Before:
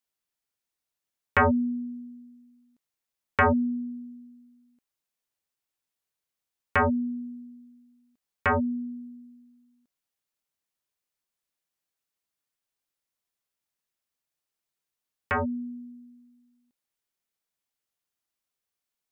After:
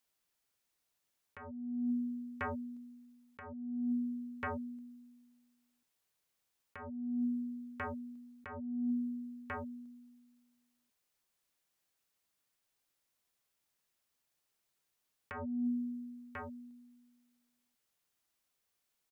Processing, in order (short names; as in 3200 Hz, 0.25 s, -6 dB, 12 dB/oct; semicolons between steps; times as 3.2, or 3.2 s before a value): on a send: echo 1.042 s -22.5 dB; on the sum: negative-ratio compressor -36 dBFS, ratio -1; gain -2.5 dB